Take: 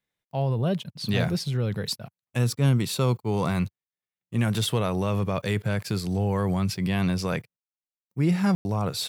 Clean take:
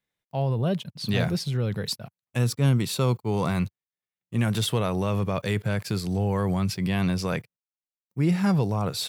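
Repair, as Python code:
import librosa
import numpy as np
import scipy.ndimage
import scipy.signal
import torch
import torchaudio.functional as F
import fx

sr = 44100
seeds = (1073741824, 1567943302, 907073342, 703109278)

y = fx.fix_ambience(x, sr, seeds[0], print_start_s=0.0, print_end_s=0.5, start_s=8.55, end_s=8.65)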